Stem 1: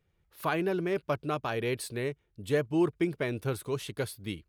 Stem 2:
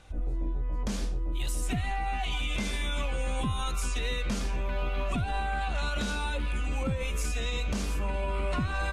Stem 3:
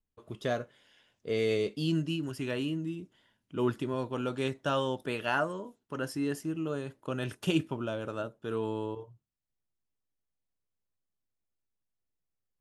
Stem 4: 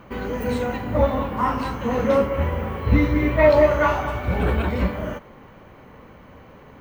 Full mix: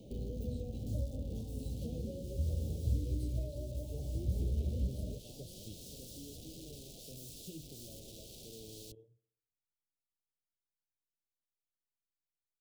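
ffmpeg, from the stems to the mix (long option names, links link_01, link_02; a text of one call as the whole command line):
ffmpeg -i stem1.wav -i stem2.wav -i stem3.wav -i stem4.wav -filter_complex "[0:a]adelay=1400,volume=-9.5dB[link_01];[1:a]highpass=44,aeval=exprs='(mod(42.2*val(0)+1,2)-1)/42.2':channel_layout=same,volume=-8dB[link_02];[2:a]volume=-14dB,asplit=2[link_03][link_04];[link_04]volume=-20.5dB[link_05];[3:a]acompressor=threshold=-22dB:ratio=6,volume=-5dB[link_06];[link_05]aecho=0:1:66|132|198|264|330|396|462:1|0.5|0.25|0.125|0.0625|0.0312|0.0156[link_07];[link_01][link_02][link_03][link_06][link_07]amix=inputs=5:normalize=0,acrossover=split=140[link_08][link_09];[link_09]acompressor=threshold=-48dB:ratio=3[link_10];[link_08][link_10]amix=inputs=2:normalize=0,asuperstop=centerf=1400:order=8:qfactor=0.51" out.wav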